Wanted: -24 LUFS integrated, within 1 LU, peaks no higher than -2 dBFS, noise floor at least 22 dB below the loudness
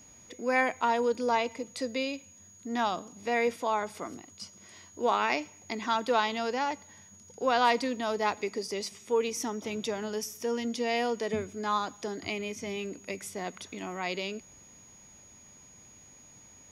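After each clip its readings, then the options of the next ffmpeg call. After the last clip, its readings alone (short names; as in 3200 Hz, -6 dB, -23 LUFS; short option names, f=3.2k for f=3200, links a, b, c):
steady tone 6700 Hz; tone level -53 dBFS; loudness -31.0 LUFS; peak -11.0 dBFS; loudness target -24.0 LUFS
-> -af "bandreject=f=6.7k:w=30"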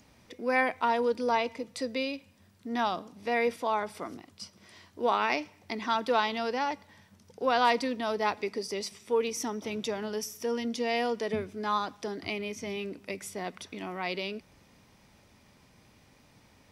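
steady tone none; loudness -31.0 LUFS; peak -11.0 dBFS; loudness target -24.0 LUFS
-> -af "volume=7dB"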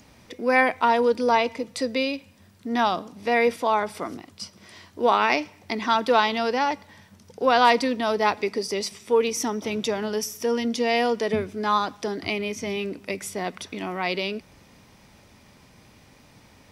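loudness -24.0 LUFS; peak -4.0 dBFS; noise floor -54 dBFS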